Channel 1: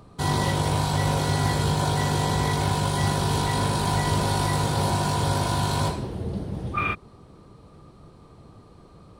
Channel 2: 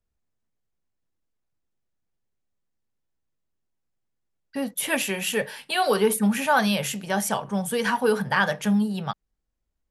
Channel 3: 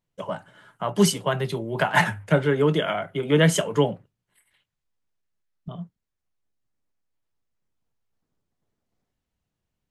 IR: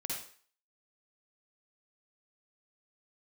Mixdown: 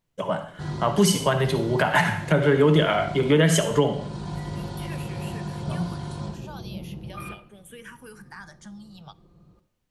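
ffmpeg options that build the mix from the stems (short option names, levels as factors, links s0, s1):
-filter_complex "[0:a]lowpass=f=7600:w=0.5412,lowpass=f=7600:w=1.3066,lowshelf=f=420:g=11,aecho=1:1:5.7:0.56,adelay=400,volume=0.119,asplit=2[s0][s1];[s1]volume=0.376[s2];[1:a]acrossover=split=2200|4900[s3][s4][s5];[s3]acompressor=threshold=0.0178:ratio=4[s6];[s4]acompressor=threshold=0.00891:ratio=4[s7];[s5]acompressor=threshold=0.00708:ratio=4[s8];[s6][s7][s8]amix=inputs=3:normalize=0,asplit=2[s9][s10];[s10]afreqshift=-0.4[s11];[s9][s11]amix=inputs=2:normalize=1,volume=0.398,asplit=2[s12][s13];[s13]volume=0.0841[s14];[2:a]volume=1.26,asplit=3[s15][s16][s17];[s16]volume=0.501[s18];[s17]apad=whole_len=423197[s19];[s0][s19]sidechaincompress=threshold=0.0708:ratio=8:attack=33:release=475[s20];[3:a]atrim=start_sample=2205[s21];[s2][s14][s18]amix=inputs=3:normalize=0[s22];[s22][s21]afir=irnorm=-1:irlink=0[s23];[s20][s12][s15][s23]amix=inputs=4:normalize=0,alimiter=limit=0.376:level=0:latency=1:release=220"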